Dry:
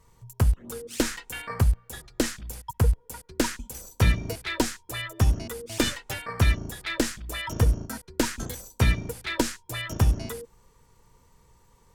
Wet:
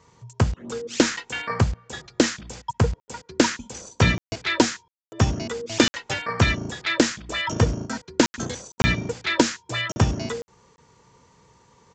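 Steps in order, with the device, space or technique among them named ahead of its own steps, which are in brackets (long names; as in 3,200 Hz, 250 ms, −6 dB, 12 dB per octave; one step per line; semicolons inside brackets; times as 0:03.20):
call with lost packets (high-pass filter 120 Hz 12 dB per octave; downsampling to 16,000 Hz; dropped packets of 20 ms bursts)
level +7 dB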